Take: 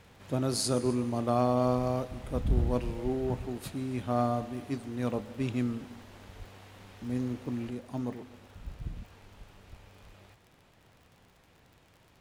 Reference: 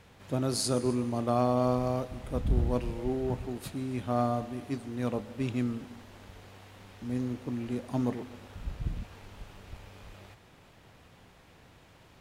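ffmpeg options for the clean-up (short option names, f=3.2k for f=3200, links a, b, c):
-filter_complex "[0:a]adeclick=t=4,asplit=3[a][b][c];[a]afade=t=out:st=6.38:d=0.02[d];[b]highpass=f=140:w=0.5412,highpass=f=140:w=1.3066,afade=t=in:st=6.38:d=0.02,afade=t=out:st=6.5:d=0.02[e];[c]afade=t=in:st=6.5:d=0.02[f];[d][e][f]amix=inputs=3:normalize=0,asetnsamples=n=441:p=0,asendcmd='7.7 volume volume 5dB',volume=0dB"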